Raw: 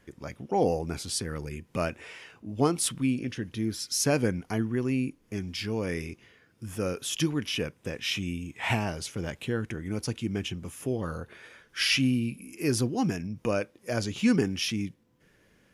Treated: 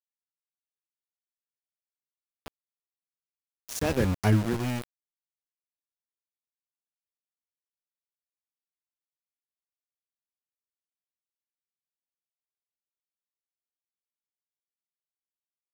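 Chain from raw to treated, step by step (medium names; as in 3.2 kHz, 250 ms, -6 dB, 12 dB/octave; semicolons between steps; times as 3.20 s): octave divider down 1 oct, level -1 dB; Doppler pass-by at 4.23 s, 21 m/s, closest 3 m; small samples zeroed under -34.5 dBFS; trim +6 dB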